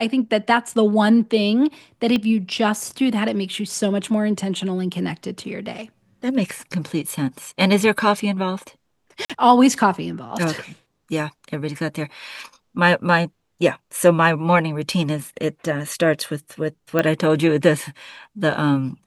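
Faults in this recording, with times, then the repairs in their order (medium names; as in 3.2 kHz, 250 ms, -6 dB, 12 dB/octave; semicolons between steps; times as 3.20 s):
2.16 s: pop -11 dBFS
9.25–9.30 s: dropout 46 ms
16.99 s: pop -7 dBFS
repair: de-click; interpolate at 9.25 s, 46 ms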